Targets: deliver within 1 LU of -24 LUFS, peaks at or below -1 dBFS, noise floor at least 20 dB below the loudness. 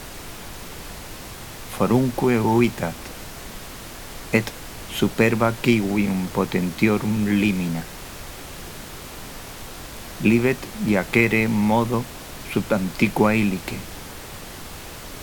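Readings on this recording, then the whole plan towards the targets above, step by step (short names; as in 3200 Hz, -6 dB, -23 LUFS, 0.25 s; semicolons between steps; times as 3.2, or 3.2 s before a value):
noise floor -38 dBFS; noise floor target -42 dBFS; loudness -21.5 LUFS; peak -3.0 dBFS; loudness target -24.0 LUFS
-> noise print and reduce 6 dB; gain -2.5 dB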